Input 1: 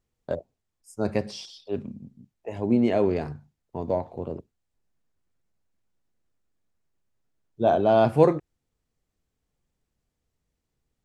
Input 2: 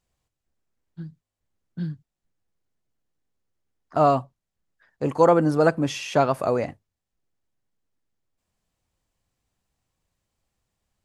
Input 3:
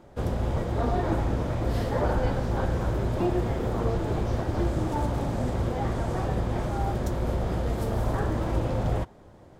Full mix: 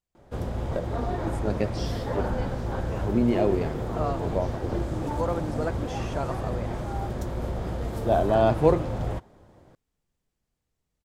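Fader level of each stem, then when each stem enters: -2.0 dB, -12.0 dB, -3.0 dB; 0.45 s, 0.00 s, 0.15 s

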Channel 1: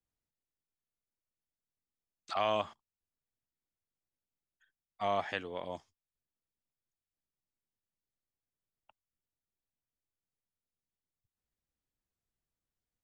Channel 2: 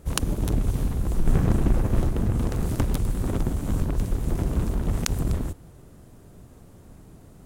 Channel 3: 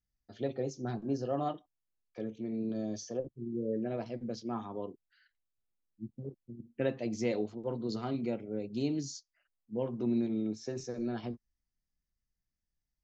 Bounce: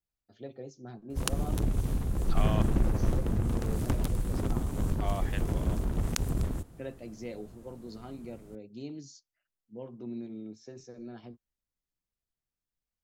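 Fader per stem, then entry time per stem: -5.0 dB, -5.0 dB, -8.5 dB; 0.00 s, 1.10 s, 0.00 s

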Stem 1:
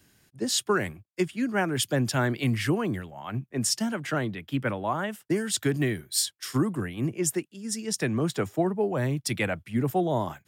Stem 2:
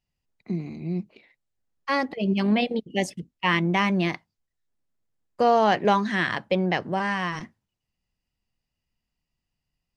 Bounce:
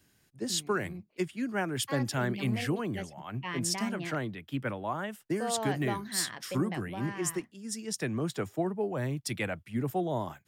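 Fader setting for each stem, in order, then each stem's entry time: -5.5 dB, -15.0 dB; 0.00 s, 0.00 s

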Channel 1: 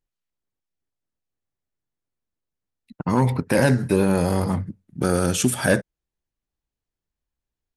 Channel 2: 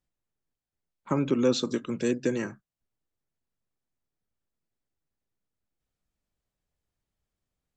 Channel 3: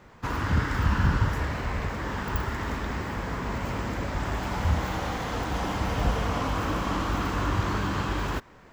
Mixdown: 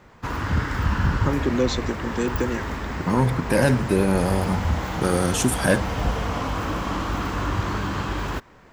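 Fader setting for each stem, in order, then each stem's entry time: -1.0 dB, +1.5 dB, +1.5 dB; 0.00 s, 0.15 s, 0.00 s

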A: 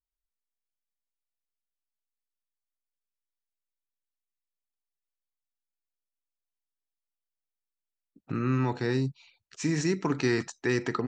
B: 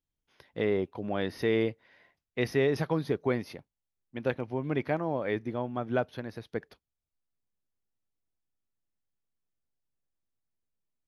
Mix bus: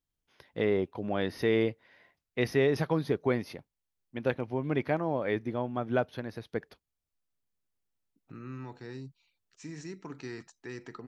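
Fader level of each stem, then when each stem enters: -15.0 dB, +0.5 dB; 0.00 s, 0.00 s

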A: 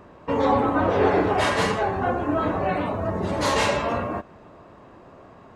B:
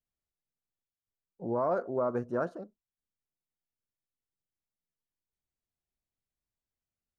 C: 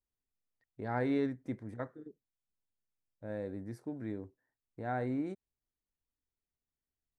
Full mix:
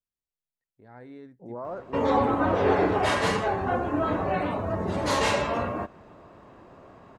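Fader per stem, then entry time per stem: -2.5 dB, -6.5 dB, -13.5 dB; 1.65 s, 0.00 s, 0.00 s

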